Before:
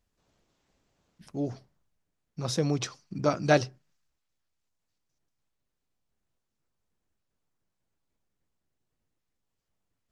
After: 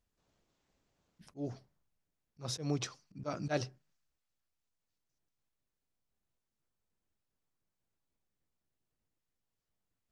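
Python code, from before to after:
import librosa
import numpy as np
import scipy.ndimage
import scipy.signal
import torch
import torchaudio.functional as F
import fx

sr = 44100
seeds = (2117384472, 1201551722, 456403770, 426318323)

y = fx.auto_swell(x, sr, attack_ms=125.0)
y = y * librosa.db_to_amplitude(-5.5)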